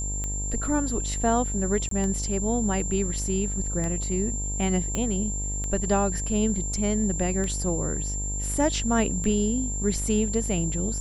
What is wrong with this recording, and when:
buzz 50 Hz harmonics 21 -31 dBFS
tick 33 1/3 rpm -19 dBFS
whine 7.3 kHz -31 dBFS
1.89–1.91 s: dropout 23 ms
4.95 s: pop -14 dBFS

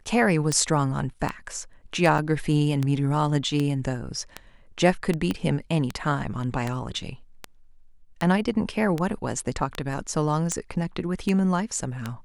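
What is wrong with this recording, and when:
tick 78 rpm -13 dBFS
2.18–2.19 s: dropout 5.2 ms
5.31 s: pop -14 dBFS

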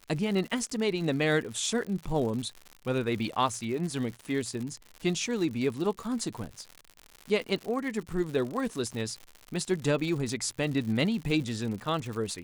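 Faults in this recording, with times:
crackle 120 per s -35 dBFS

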